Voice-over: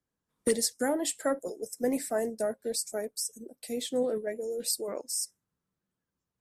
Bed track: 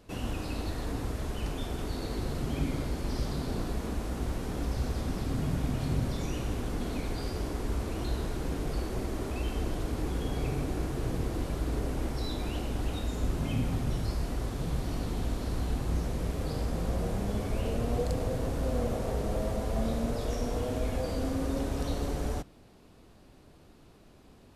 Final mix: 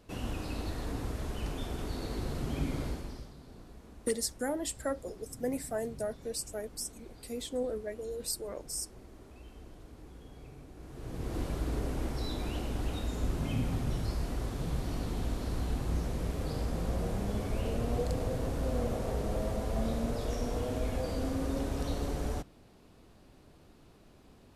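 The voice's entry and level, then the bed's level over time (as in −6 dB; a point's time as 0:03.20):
3.60 s, −5.0 dB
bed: 0:02.89 −2.5 dB
0:03.34 −18.5 dB
0:10.74 −18.5 dB
0:11.37 −2 dB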